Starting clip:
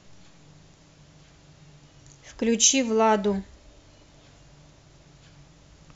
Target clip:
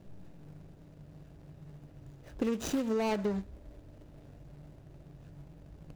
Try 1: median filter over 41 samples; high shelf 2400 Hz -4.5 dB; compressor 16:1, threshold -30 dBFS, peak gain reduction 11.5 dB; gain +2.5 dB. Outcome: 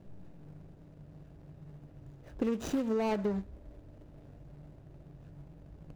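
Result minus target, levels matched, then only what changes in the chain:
4000 Hz band -4.0 dB
change: high shelf 2400 Hz +2 dB

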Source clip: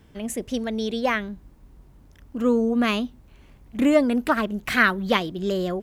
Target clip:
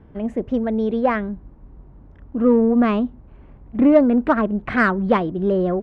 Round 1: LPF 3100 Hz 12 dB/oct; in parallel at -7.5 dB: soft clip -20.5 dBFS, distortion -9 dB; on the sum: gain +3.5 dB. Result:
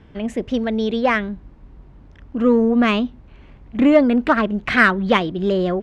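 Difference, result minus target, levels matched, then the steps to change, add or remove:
4000 Hz band +12.0 dB
change: LPF 1200 Hz 12 dB/oct

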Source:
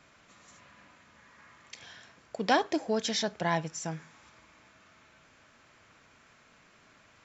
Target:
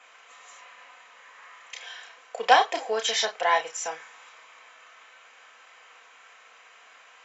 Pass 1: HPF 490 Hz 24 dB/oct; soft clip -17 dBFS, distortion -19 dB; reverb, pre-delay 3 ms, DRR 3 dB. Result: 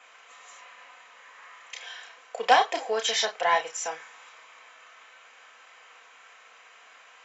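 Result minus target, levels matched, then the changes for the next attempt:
soft clip: distortion +17 dB
change: soft clip -7 dBFS, distortion -36 dB

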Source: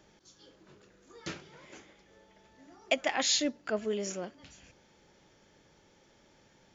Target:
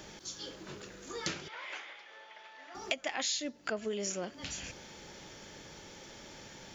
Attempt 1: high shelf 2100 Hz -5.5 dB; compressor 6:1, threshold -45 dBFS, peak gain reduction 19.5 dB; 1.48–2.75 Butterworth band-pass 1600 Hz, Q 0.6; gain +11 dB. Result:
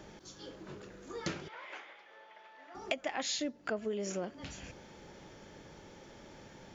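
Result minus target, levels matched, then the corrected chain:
4000 Hz band -3.5 dB
high shelf 2100 Hz +6 dB; compressor 6:1, threshold -45 dBFS, peak gain reduction 23.5 dB; 1.48–2.75 Butterworth band-pass 1600 Hz, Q 0.6; gain +11 dB

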